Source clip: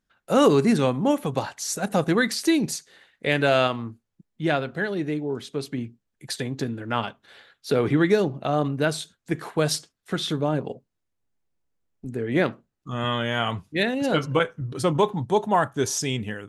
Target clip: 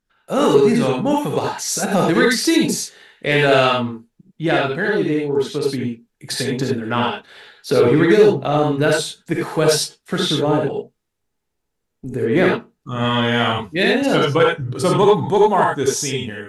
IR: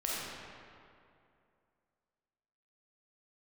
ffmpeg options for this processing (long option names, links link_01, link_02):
-filter_complex "[0:a]dynaudnorm=framelen=260:gausssize=9:maxgain=6dB[link_01];[1:a]atrim=start_sample=2205,atrim=end_sample=3087,asetrate=29547,aresample=44100[link_02];[link_01][link_02]afir=irnorm=-1:irlink=0,asplit=2[link_03][link_04];[link_04]asoftclip=type=tanh:threshold=-10.5dB,volume=-7dB[link_05];[link_03][link_05]amix=inputs=2:normalize=0,volume=-3.5dB"